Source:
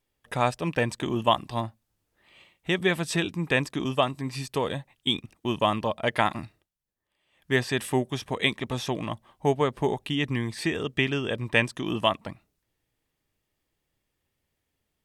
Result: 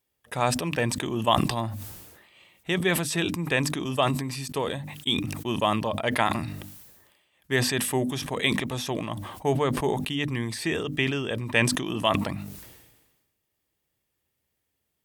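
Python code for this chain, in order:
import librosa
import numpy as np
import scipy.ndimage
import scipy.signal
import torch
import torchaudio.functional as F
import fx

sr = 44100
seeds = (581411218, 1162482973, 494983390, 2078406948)

y = scipy.signal.sosfilt(scipy.signal.butter(2, 48.0, 'highpass', fs=sr, output='sos'), x)
y = fx.high_shelf(y, sr, hz=9700.0, db=9.5)
y = fx.hum_notches(y, sr, base_hz=50, count=6)
y = fx.sustainer(y, sr, db_per_s=46.0)
y = y * librosa.db_to_amplitude(-1.5)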